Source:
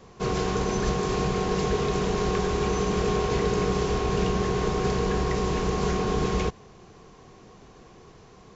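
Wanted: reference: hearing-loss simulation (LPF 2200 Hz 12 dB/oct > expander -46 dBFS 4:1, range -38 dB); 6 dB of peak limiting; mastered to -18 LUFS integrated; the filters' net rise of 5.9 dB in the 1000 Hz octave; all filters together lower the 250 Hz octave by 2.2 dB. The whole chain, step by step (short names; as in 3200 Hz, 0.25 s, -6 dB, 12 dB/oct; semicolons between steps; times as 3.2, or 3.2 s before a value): bell 250 Hz -4 dB; bell 1000 Hz +7.5 dB; limiter -18 dBFS; LPF 2200 Hz 12 dB/oct; expander -46 dBFS 4:1, range -38 dB; gain +10 dB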